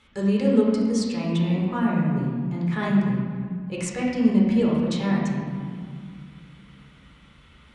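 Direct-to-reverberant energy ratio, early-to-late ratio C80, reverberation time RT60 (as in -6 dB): -5.0 dB, 2.0 dB, 2.1 s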